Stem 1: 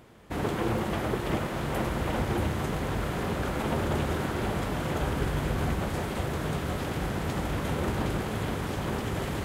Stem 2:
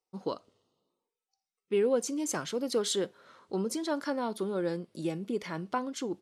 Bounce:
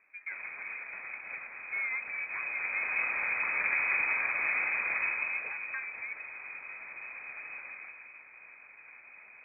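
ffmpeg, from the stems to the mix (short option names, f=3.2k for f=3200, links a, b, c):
-filter_complex "[0:a]volume=-2dB,afade=t=in:st=2.29:d=0.75:silence=0.281838,afade=t=out:st=4.89:d=0.67:silence=0.266073,afade=t=out:st=7.57:d=0.44:silence=0.375837[a];[1:a]asoftclip=type=tanh:threshold=-25dB,volume=-5.5dB[b];[a][b]amix=inputs=2:normalize=0,lowpass=f=2.2k:t=q:w=0.5098,lowpass=f=2.2k:t=q:w=0.6013,lowpass=f=2.2k:t=q:w=0.9,lowpass=f=2.2k:t=q:w=2.563,afreqshift=-2600"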